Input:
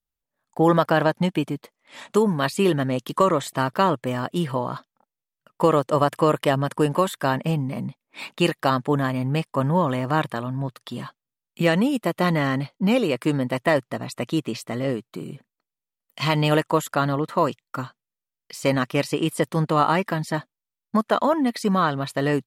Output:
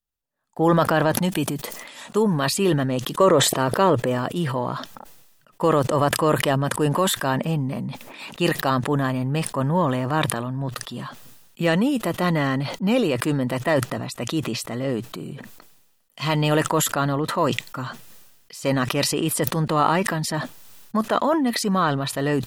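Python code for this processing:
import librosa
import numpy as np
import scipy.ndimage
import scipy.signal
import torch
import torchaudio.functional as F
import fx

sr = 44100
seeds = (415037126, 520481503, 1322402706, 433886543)

y = fx.high_shelf(x, sr, hz=6000.0, db=11.0, at=(1.17, 2.11))
y = fx.peak_eq(y, sr, hz=460.0, db=7.5, octaves=0.77, at=(3.2, 4.18))
y = fx.notch(y, sr, hz=2200.0, q=13.0)
y = fx.transient(y, sr, attack_db=-3, sustain_db=4)
y = fx.sustainer(y, sr, db_per_s=46.0)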